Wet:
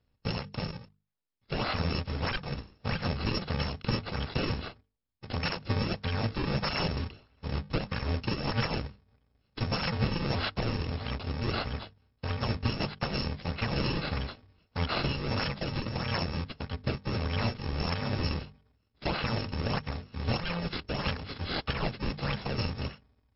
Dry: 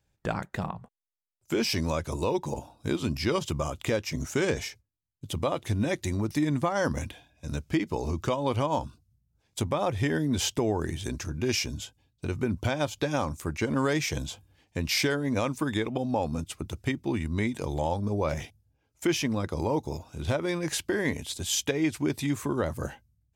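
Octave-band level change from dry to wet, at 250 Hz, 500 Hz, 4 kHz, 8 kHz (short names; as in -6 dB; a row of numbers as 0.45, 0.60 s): -6.0 dB, -7.0 dB, -0.5 dB, under -25 dB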